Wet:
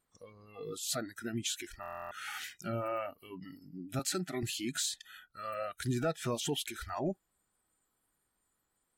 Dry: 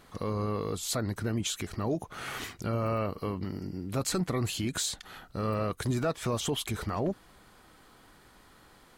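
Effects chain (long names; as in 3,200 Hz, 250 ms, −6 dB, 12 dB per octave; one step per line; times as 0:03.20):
noise reduction from a noise print of the clip's start 24 dB
0:03.99–0:04.43: high-pass filter 230 Hz 12 dB per octave
buffer that repeats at 0:01.81, samples 1,024, times 12
level −2.5 dB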